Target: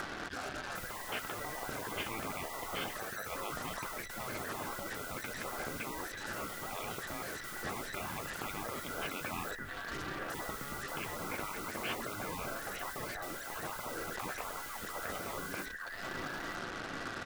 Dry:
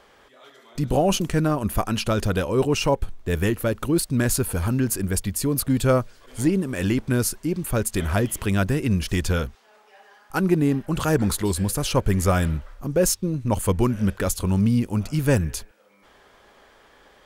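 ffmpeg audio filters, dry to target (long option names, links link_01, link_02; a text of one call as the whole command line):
ffmpeg -i in.wav -filter_complex "[0:a]afftfilt=real='real(if(between(b,1,1012),(2*floor((b-1)/92)+1)*92-b,b),0)':imag='imag(if(between(b,1,1012),(2*floor((b-1)/92)+1)*92-b,b),0)*if(between(b,1,1012),-1,1)':win_size=2048:overlap=0.75,lowpass=frequency=1800:width=0.5412,lowpass=frequency=1800:width=1.3066,equalizer=frequency=910:width_type=o:width=0.62:gain=-4.5,bandreject=frequency=990:width=15,asplit=2[link_01][link_02];[link_02]acompressor=threshold=-33dB:ratio=5,volume=1.5dB[link_03];[link_01][link_03]amix=inputs=2:normalize=0,alimiter=limit=-17dB:level=0:latency=1:release=14,acompressor=mode=upward:threshold=-40dB:ratio=2.5,flanger=delay=5.5:depth=9.7:regen=-58:speed=0.24:shape=triangular,acrusher=bits=7:mix=0:aa=0.5,aecho=1:1:898:0.237,afftfilt=real='re*lt(hypot(re,im),0.0251)':imag='im*lt(hypot(re,im),0.0251)':win_size=1024:overlap=0.75,volume=9dB" out.wav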